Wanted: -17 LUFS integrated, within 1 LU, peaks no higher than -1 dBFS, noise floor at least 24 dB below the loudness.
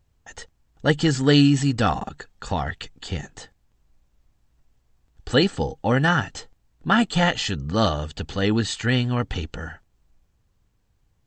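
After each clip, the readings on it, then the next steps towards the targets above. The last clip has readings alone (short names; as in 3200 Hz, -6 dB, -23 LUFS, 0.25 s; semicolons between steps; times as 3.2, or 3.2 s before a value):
loudness -22.5 LUFS; peak -3.0 dBFS; loudness target -17.0 LUFS
-> gain +5.5 dB; limiter -1 dBFS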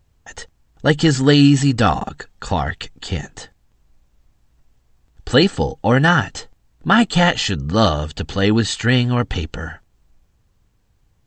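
loudness -17.5 LUFS; peak -1.0 dBFS; noise floor -62 dBFS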